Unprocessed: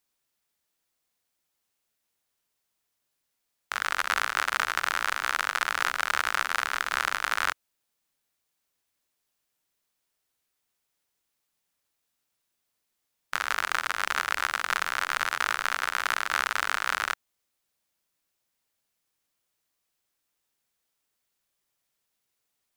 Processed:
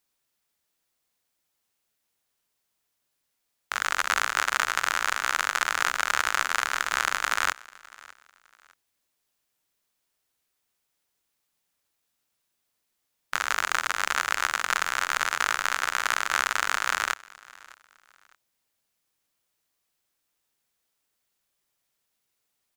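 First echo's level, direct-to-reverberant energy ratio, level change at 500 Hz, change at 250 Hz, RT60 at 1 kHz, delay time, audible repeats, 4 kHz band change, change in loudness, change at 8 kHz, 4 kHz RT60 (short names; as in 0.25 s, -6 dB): -22.5 dB, none, +1.5 dB, +1.5 dB, none, 0.607 s, 2, +2.0 dB, +2.0 dB, +5.5 dB, none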